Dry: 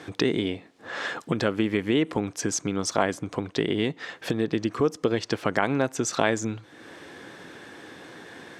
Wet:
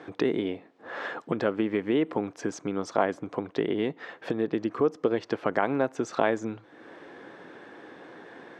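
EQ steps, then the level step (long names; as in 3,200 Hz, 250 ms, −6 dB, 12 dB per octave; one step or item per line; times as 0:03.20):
resonant band-pass 600 Hz, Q 0.51
0.0 dB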